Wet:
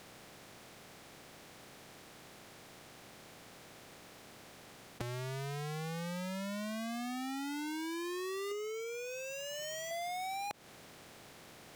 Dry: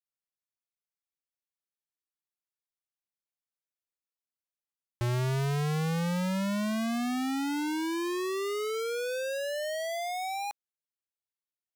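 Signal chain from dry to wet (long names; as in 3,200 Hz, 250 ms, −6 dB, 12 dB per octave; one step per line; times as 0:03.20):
compressor on every frequency bin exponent 0.4
0:08.51–0:09.91: EQ curve with evenly spaced ripples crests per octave 0.74, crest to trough 14 dB
downward compressor 16 to 1, threshold −36 dBFS, peak gain reduction 12.5 dB
level −2.5 dB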